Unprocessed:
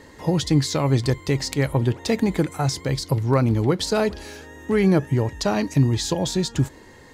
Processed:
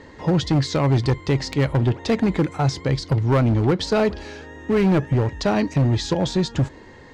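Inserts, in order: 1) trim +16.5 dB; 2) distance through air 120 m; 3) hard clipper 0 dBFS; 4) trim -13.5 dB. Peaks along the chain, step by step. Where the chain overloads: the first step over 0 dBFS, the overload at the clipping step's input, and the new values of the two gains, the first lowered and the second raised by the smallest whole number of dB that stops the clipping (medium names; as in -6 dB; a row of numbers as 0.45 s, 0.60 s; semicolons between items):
+10.5 dBFS, +8.5 dBFS, 0.0 dBFS, -13.5 dBFS; step 1, 8.5 dB; step 1 +7.5 dB, step 4 -4.5 dB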